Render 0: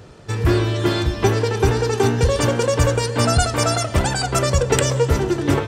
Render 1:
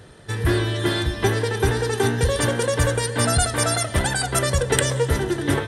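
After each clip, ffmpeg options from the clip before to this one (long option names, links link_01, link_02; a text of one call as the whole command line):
ffmpeg -i in.wav -af "superequalizer=11b=2:13b=1.78:16b=3.55,volume=-3.5dB" out.wav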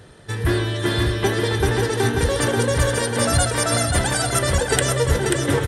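ffmpeg -i in.wav -af "aecho=1:1:536|1072|1608|2144:0.631|0.177|0.0495|0.0139" out.wav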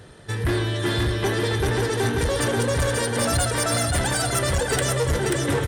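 ffmpeg -i in.wav -af "asoftclip=type=tanh:threshold=-16.5dB" out.wav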